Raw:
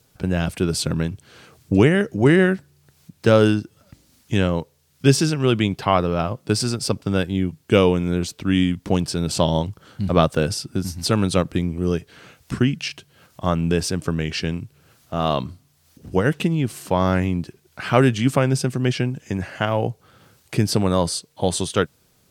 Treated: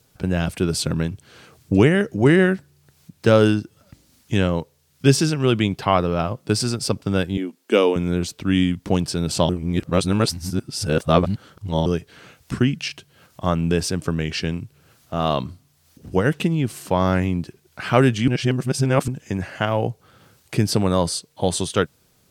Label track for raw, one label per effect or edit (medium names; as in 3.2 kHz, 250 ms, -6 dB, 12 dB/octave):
7.370000	7.960000	elliptic high-pass 220 Hz
9.490000	11.860000	reverse
18.280000	19.080000	reverse